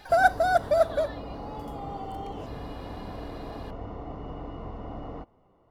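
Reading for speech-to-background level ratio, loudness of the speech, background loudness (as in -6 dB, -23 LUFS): 14.5 dB, -25.0 LUFS, -39.5 LUFS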